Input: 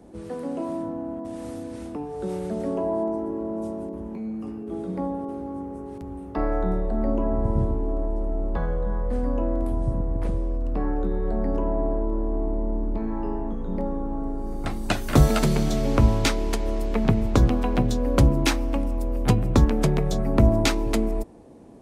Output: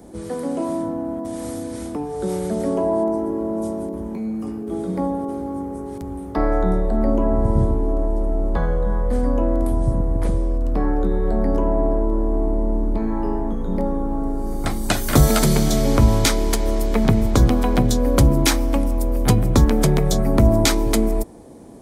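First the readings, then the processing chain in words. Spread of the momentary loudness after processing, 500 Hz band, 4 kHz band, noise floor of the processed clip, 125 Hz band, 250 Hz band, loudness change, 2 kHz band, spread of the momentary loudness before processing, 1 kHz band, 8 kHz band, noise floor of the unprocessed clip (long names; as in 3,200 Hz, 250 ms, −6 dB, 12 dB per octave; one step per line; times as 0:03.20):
11 LU, +5.0 dB, +6.0 dB, −31 dBFS, +4.0 dB, +5.0 dB, +5.0 dB, +4.0 dB, 13 LU, +5.0 dB, +10.0 dB, −36 dBFS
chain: high-shelf EQ 6,300 Hz +11.5 dB
notch filter 2,700 Hz, Q 10
in parallel at +1 dB: brickwall limiter −13.5 dBFS, peak gain reduction 10 dB
on the sum: level −1 dB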